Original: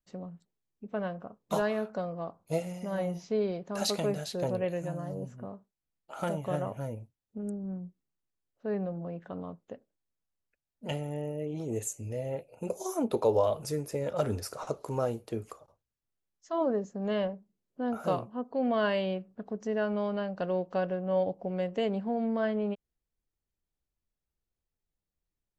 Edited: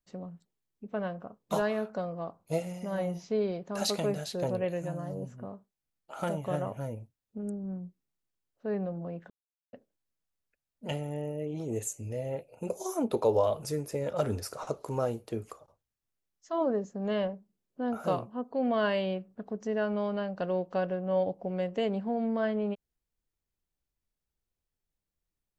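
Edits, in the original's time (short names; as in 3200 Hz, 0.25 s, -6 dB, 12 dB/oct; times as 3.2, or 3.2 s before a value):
9.3–9.73 mute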